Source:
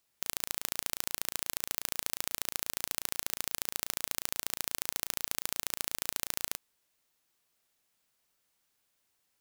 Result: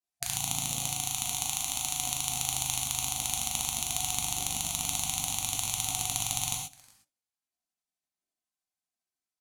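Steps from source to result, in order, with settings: pitch bend over the whole clip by -5.5 st starting unshifted; small resonant body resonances 200/310 Hz, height 16 dB, ringing for 20 ms; peak limiter -6.5 dBFS, peak gain reduction 4 dB; treble shelf 4.5 kHz +11.5 dB; on a send: delay 361 ms -23.5 dB; on the sum: expander -54 dBFS; touch-sensitive flanger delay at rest 3.9 ms, full sweep at -39 dBFS; low-pass 10 kHz 12 dB/octave; high-order bell 500 Hz +16 dB 1.1 oct; spectral gate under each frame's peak -15 dB weak; gated-style reverb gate 150 ms flat, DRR -1 dB; trim +2.5 dB

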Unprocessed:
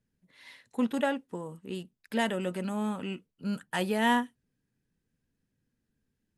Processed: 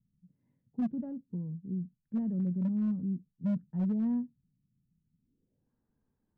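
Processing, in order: low-pass sweep 170 Hz -> 980 Hz, 5.13–5.71 s; hard clipper -26 dBFS, distortion -20 dB

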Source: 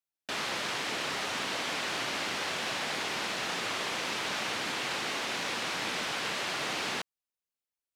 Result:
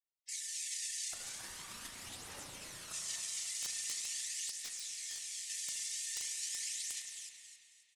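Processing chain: brick-wall FIR high-pass 1.8 kHz; 1.13–2.92 s: integer overflow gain 35.5 dB; peak limiter -34 dBFS, peak gain reduction 10 dB; spectral gate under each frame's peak -15 dB weak; low-pass 10 kHz 24 dB/octave; frequency-shifting echo 271 ms, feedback 37%, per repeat +34 Hz, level -6 dB; phaser 0.43 Hz, delay 1.5 ms, feedback 38%; integer overflow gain 42 dB; spring tank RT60 2.4 s, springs 35 ms, chirp 30 ms, DRR 3.5 dB; 4.51–5.50 s: detune thickener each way 42 cents; trim +13.5 dB

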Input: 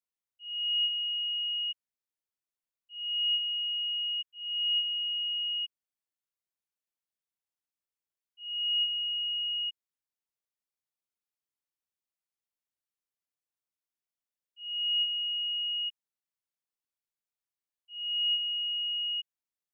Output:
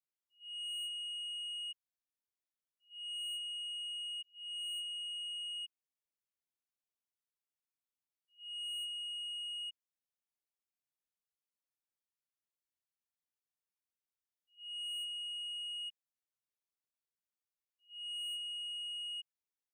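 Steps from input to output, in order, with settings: saturation -32 dBFS, distortion -13 dB; on a send: reverse echo 94 ms -20.5 dB; on the sum: trim -6.5 dB

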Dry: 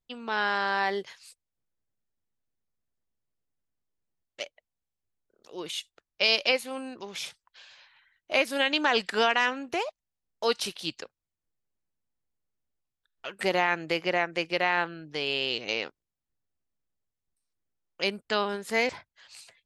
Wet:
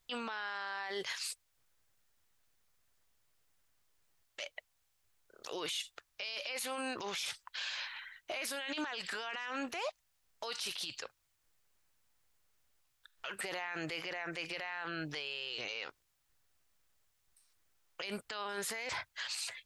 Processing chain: FFT filter 120 Hz 0 dB, 200 Hz -6 dB, 1.3 kHz +8 dB; peak limiter -36.5 dBFS, peak gain reduction 35 dB; trim +7 dB

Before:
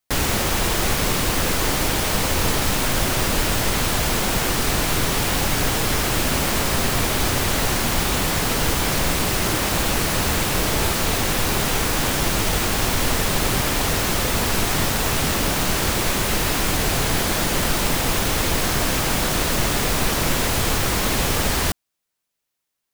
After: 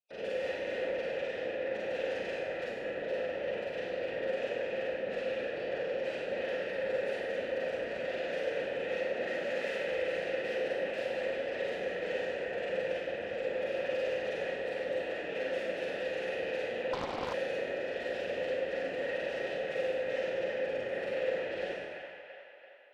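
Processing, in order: de-hum 46.33 Hz, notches 13; spectral gate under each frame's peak -15 dB strong; elliptic band-stop 1.2–2.4 kHz; 8.94–9.66 s: frequency shift +170 Hz; wavefolder -26 dBFS; vowel filter e; feedback echo behind a band-pass 337 ms, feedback 54%, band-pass 1.4 kHz, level -3.5 dB; Schroeder reverb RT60 1.3 s, combs from 33 ms, DRR -6.5 dB; 16.93–17.34 s: loudspeaker Doppler distortion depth 0.94 ms

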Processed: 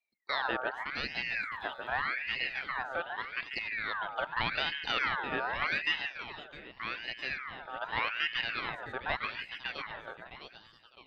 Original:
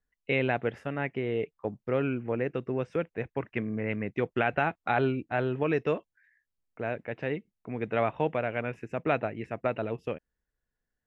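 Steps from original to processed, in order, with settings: fade out at the end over 2.29 s; 0.90–2.04 s: crackle 150 per s -54 dBFS; on a send: two-band feedback delay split 820 Hz, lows 143 ms, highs 659 ms, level -5.5 dB; on the sum: ring modulator with a swept carrier 1.7 kHz, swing 40%, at 0.84 Hz; trim -3 dB

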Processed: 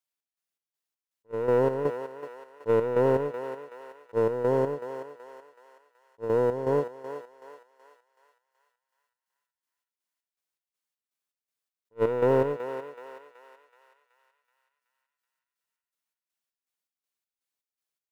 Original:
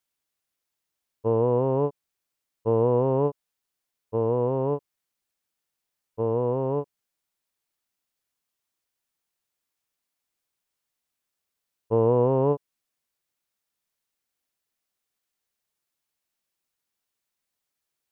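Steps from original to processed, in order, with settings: high-pass 220 Hz 6 dB/octave; waveshaping leveller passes 2; square tremolo 2.7 Hz, depth 60%, duty 55%; thinning echo 376 ms, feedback 56%, high-pass 820 Hz, level -6.5 dB; attacks held to a fixed rise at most 510 dB/s; trim -3 dB

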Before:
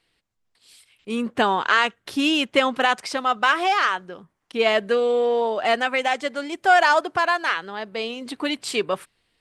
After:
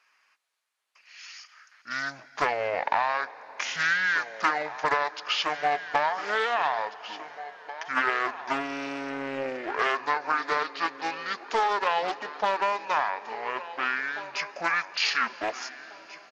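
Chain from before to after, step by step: high-pass 1.3 kHz 12 dB/octave; tilt EQ +1.5 dB/octave; compression 10:1, threshold -24 dBFS, peak gain reduction 11 dB; feedback delay 1004 ms, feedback 25%, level -15 dB; on a send at -17 dB: reverberation RT60 4.2 s, pre-delay 78 ms; on the sum: speed mistake 78 rpm record played at 45 rpm; loudspeaker Doppler distortion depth 0.24 ms; trim +2.5 dB

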